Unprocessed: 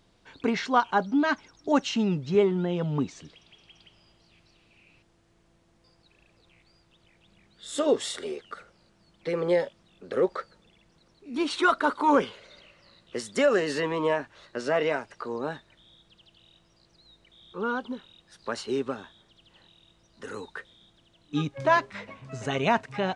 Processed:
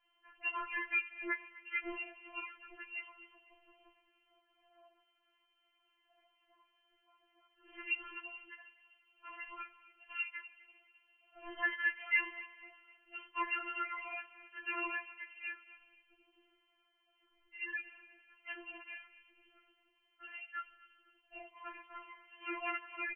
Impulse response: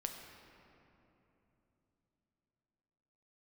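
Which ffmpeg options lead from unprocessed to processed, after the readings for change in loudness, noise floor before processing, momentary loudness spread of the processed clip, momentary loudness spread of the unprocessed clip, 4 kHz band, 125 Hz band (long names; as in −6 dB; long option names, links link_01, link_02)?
−12.5 dB, −64 dBFS, 20 LU, 17 LU, −11.5 dB, below −40 dB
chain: -filter_complex "[0:a]highshelf=frequency=2500:gain=-6.5,aeval=exprs='val(0)+0.00141*(sin(2*PI*50*n/s)+sin(2*PI*2*50*n/s)/2+sin(2*PI*3*50*n/s)/3+sin(2*PI*4*50*n/s)/4+sin(2*PI*5*50*n/s)/5)':channel_layout=same,aderivative,aeval=exprs='0.0473*(cos(1*acos(clip(val(0)/0.0473,-1,1)))-cos(1*PI/2))+0.00211*(cos(6*acos(clip(val(0)/0.0473,-1,1)))-cos(6*PI/2))':channel_layout=same,asplit=2[link_01][link_02];[link_02]adelay=249,lowpass=frequency=970:poles=1,volume=-14.5dB,asplit=2[link_03][link_04];[link_04]adelay=249,lowpass=frequency=970:poles=1,volume=0.52,asplit=2[link_05][link_06];[link_06]adelay=249,lowpass=frequency=970:poles=1,volume=0.52,asplit=2[link_07][link_08];[link_08]adelay=249,lowpass=frequency=970:poles=1,volume=0.52,asplit=2[link_09][link_10];[link_10]adelay=249,lowpass=frequency=970:poles=1,volume=0.52[link_11];[link_01][link_03][link_05][link_07][link_09][link_11]amix=inputs=6:normalize=0,asplit=2[link_12][link_13];[1:a]atrim=start_sample=2205,asetrate=83790,aresample=44100,lowshelf=frequency=130:gain=10.5[link_14];[link_13][link_14]afir=irnorm=-1:irlink=0,volume=-2.5dB[link_15];[link_12][link_15]amix=inputs=2:normalize=0,lowpass=frequency=2700:width_type=q:width=0.5098,lowpass=frequency=2700:width_type=q:width=0.6013,lowpass=frequency=2700:width_type=q:width=0.9,lowpass=frequency=2700:width_type=q:width=2.563,afreqshift=-3200,afftfilt=real='re*4*eq(mod(b,16),0)':imag='im*4*eq(mod(b,16),0)':win_size=2048:overlap=0.75,volume=8dB"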